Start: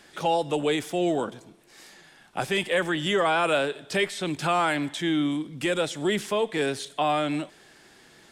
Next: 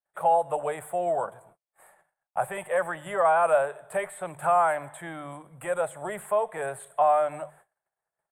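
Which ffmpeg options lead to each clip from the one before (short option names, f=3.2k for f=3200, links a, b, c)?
-af "bandreject=f=50:t=h:w=6,bandreject=f=100:t=h:w=6,bandreject=f=150:t=h:w=6,agate=range=-43dB:threshold=-49dB:ratio=16:detection=peak,firequalizer=gain_entry='entry(150,0);entry(260,-16);entry(590,12);entry(1100,9);entry(3000,-13);entry(5700,-29);entry(8200,6)':delay=0.05:min_phase=1,volume=-7dB"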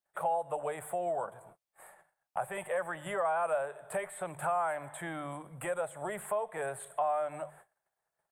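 -af "acompressor=threshold=-39dB:ratio=2,volume=1.5dB"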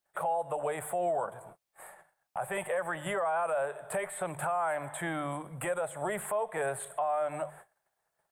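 -af "alimiter=level_in=4.5dB:limit=-24dB:level=0:latency=1:release=59,volume=-4.5dB,volume=5dB"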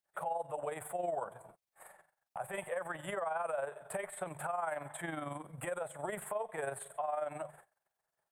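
-af "tremolo=f=22:d=0.571,volume=-3.5dB"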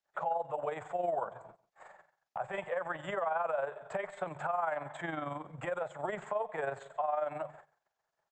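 -filter_complex "[0:a]acrossover=split=170|1300|4500[a][b][c][d];[b]crystalizer=i=9:c=0[e];[a][e][c][d]amix=inputs=4:normalize=0,aecho=1:1:143:0.0841,aresample=16000,aresample=44100,volume=1dB"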